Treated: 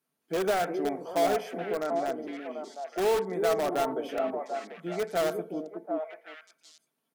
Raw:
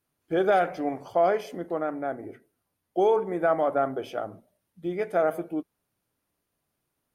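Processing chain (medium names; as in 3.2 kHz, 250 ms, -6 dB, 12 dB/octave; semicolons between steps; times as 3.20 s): high-pass 140 Hz 24 dB/octave; comb 4.5 ms, depth 37%; in parallel at -7.5 dB: integer overflow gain 19 dB; on the sum: repeats whose band climbs or falls 370 ms, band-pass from 300 Hz, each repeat 1.4 oct, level -1 dB; trim -6 dB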